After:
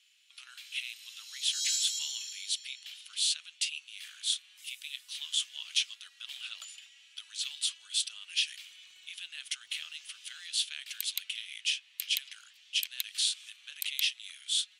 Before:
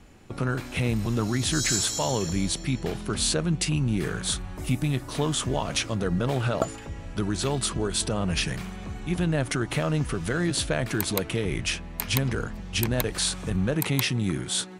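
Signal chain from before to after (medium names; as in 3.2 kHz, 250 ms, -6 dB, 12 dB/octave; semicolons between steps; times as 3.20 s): ladder high-pass 2.7 kHz, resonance 55%; 8.37–10.21 s: crackle 29 per s -56 dBFS; trim +3.5 dB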